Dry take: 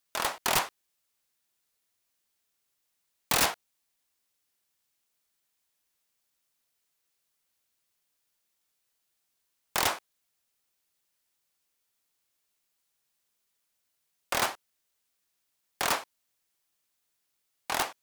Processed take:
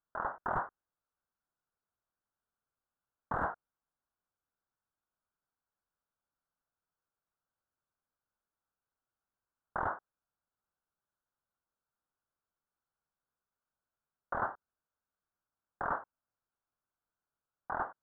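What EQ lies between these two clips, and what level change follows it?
elliptic low-pass 1.5 kHz, stop band 40 dB; distance through air 54 m; peaking EQ 390 Hz -6.5 dB 2.4 oct; 0.0 dB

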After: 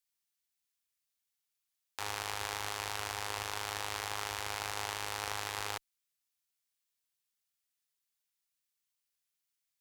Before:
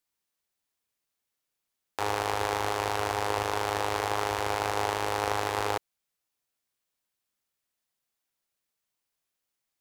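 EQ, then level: amplifier tone stack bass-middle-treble 5-5-5; +4.5 dB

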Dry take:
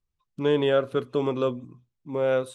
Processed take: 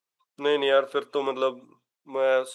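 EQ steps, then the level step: high-pass 550 Hz 12 dB/octave; +4.5 dB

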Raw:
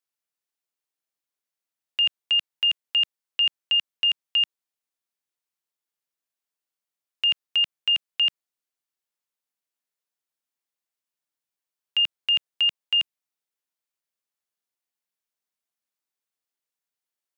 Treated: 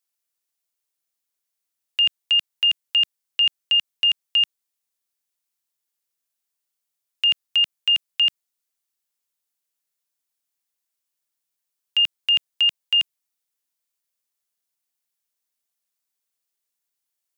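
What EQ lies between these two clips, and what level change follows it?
treble shelf 4 kHz +9 dB; 0.0 dB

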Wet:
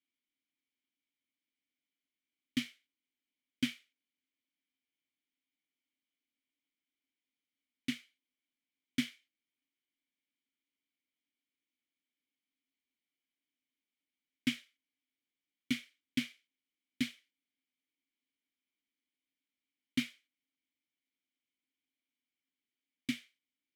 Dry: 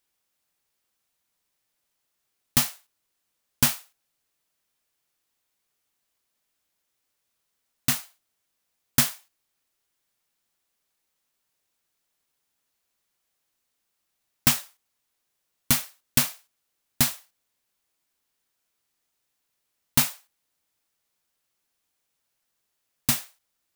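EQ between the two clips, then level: vowel filter i; +2.0 dB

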